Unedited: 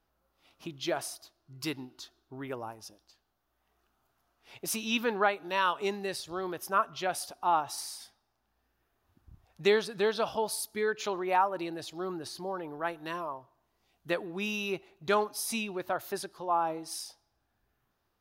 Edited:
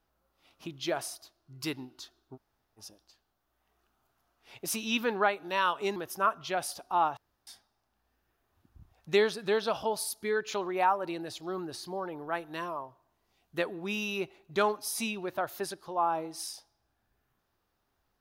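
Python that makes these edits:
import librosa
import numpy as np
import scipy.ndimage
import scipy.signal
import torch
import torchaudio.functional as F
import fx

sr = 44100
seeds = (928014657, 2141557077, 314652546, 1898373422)

y = fx.edit(x, sr, fx.room_tone_fill(start_s=2.36, length_s=0.42, crossfade_s=0.04),
    fx.cut(start_s=5.96, length_s=0.52),
    fx.room_tone_fill(start_s=7.69, length_s=0.3), tone=tone)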